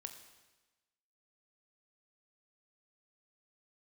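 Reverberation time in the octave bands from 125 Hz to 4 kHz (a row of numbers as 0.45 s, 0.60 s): 1.2 s, 1.2 s, 1.2 s, 1.2 s, 1.2 s, 1.1 s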